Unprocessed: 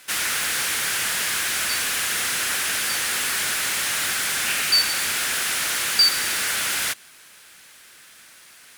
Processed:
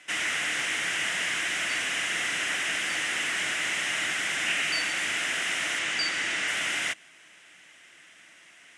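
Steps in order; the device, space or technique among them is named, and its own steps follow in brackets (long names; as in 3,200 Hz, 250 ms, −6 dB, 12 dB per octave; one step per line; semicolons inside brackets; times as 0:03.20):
car door speaker (loudspeaker in its box 84–8,400 Hz, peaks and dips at 170 Hz +5 dB, 310 Hz +9 dB, 670 Hz +7 dB, 2,000 Hz +9 dB, 2,900 Hz +7 dB, 4,400 Hz −10 dB)
0:05.79–0:06.48: low-pass filter 8,400 Hz 12 dB per octave
level −7 dB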